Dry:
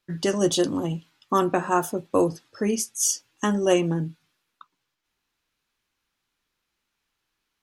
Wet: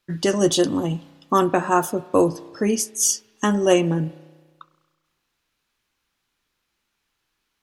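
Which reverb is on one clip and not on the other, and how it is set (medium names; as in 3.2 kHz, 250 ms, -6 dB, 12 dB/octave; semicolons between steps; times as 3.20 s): spring tank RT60 1.4 s, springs 32 ms, chirp 60 ms, DRR 18 dB; trim +3.5 dB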